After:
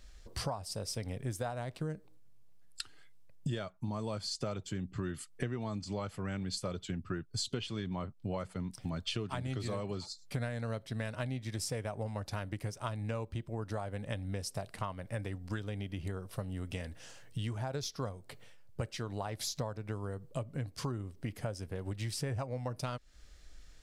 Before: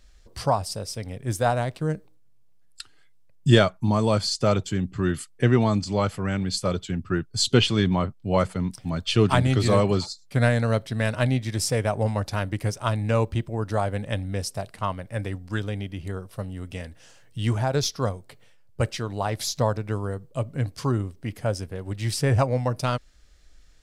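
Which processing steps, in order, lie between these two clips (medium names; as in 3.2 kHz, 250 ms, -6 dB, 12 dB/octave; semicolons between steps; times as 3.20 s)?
compression 10:1, threshold -34 dBFS, peak gain reduction 23.5 dB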